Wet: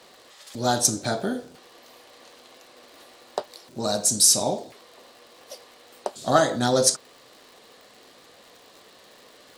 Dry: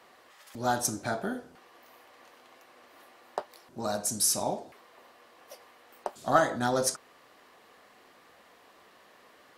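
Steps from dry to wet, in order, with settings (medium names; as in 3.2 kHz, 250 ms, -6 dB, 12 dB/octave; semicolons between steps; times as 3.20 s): graphic EQ 125/250/500/4000/8000 Hz +7/+4/+7/+11/+9 dB; crackle 150 per s -41 dBFS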